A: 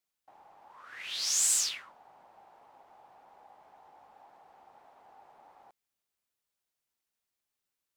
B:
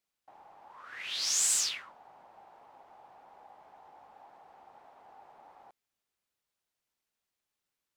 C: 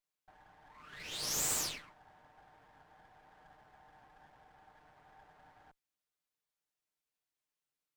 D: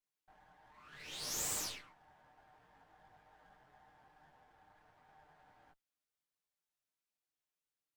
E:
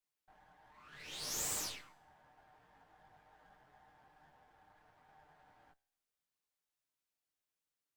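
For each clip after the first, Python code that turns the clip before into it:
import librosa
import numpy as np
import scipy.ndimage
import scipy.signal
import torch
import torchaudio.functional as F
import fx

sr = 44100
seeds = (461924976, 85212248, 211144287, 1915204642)

y1 = fx.high_shelf(x, sr, hz=7300.0, db=-6.0)
y1 = y1 * 10.0 ** (2.0 / 20.0)
y2 = fx.lower_of_two(y1, sr, delay_ms=6.6)
y2 = y2 * 10.0 ** (-4.5 / 20.0)
y3 = fx.detune_double(y2, sr, cents=11)
y4 = fx.comb_fb(y3, sr, f0_hz=73.0, decay_s=0.79, harmonics='all', damping=0.0, mix_pct=30)
y4 = y4 * 10.0 ** (2.5 / 20.0)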